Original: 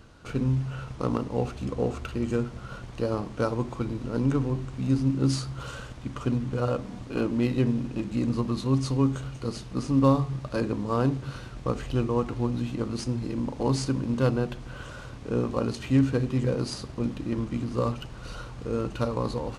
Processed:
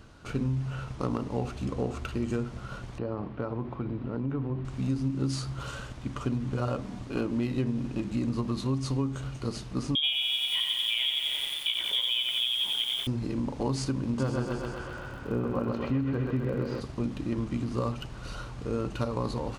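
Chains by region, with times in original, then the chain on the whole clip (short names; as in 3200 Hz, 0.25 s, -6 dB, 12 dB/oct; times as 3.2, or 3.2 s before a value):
2.98–4.65 HPF 57 Hz + compressor 3:1, threshold -27 dBFS + air absorption 400 m
9.95–13.07 inverted band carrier 3500 Hz + lo-fi delay 89 ms, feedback 80%, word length 7-bit, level -4.5 dB
14.18–16.8 LPF 2200 Hz + crackle 12/s -37 dBFS + thinning echo 0.129 s, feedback 71%, high-pass 240 Hz, level -3.5 dB
whole clip: notch 490 Hz, Q 16; compressor 6:1, threshold -25 dBFS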